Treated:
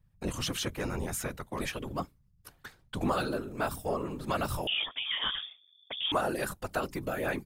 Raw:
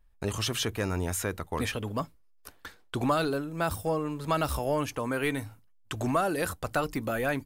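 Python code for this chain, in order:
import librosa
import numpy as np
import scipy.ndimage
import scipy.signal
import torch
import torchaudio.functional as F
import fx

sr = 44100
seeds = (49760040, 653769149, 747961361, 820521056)

y = fx.whisperise(x, sr, seeds[0])
y = fx.freq_invert(y, sr, carrier_hz=3500, at=(4.67, 6.12))
y = F.gain(torch.from_numpy(y), -3.5).numpy()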